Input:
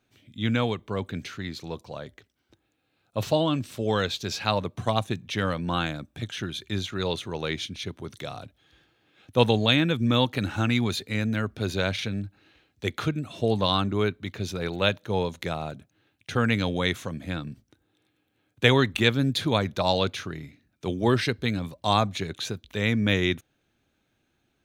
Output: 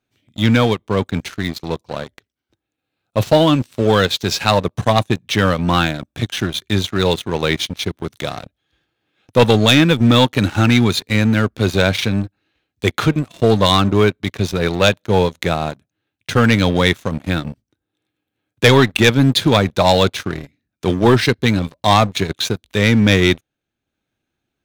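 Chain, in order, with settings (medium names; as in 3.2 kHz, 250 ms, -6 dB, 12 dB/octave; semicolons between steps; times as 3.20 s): transient shaper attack 0 dB, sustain -4 dB; waveshaping leveller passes 3; trim +1 dB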